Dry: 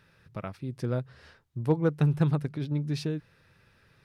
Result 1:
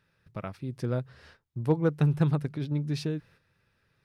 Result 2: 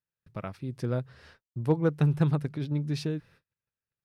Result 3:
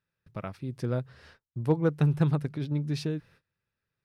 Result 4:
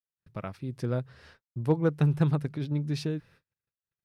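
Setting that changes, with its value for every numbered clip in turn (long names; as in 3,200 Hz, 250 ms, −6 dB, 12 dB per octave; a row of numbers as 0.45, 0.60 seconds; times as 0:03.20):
noise gate, range: −9, −36, −24, −58 decibels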